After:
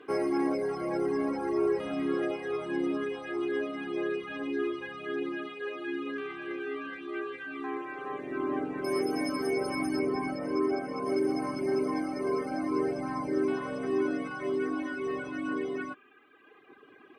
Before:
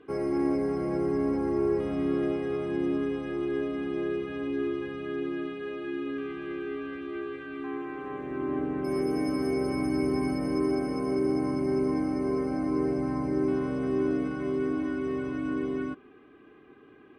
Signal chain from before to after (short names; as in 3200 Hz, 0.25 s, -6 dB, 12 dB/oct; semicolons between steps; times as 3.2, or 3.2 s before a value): HPF 570 Hz 6 dB/oct; reverb removal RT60 1.6 s; 9.99–11.06 LPF 2600 Hz 6 dB/oct; gain +7 dB